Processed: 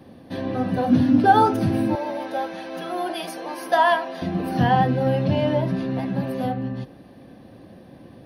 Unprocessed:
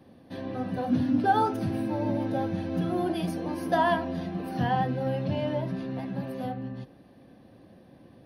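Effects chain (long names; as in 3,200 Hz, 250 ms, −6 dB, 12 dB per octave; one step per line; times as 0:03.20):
0:01.95–0:04.22: high-pass filter 620 Hz 12 dB per octave
level +8 dB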